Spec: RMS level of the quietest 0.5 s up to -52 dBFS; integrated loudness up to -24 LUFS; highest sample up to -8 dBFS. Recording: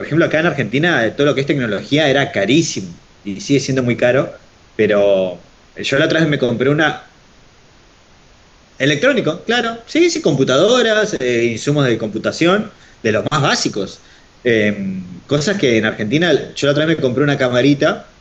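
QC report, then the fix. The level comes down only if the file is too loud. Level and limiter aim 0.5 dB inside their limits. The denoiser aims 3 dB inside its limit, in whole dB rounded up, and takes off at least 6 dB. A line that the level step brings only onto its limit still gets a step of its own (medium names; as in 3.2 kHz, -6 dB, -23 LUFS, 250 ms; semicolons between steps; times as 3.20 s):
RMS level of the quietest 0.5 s -47 dBFS: fail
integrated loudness -15.5 LUFS: fail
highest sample -2.5 dBFS: fail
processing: trim -9 dB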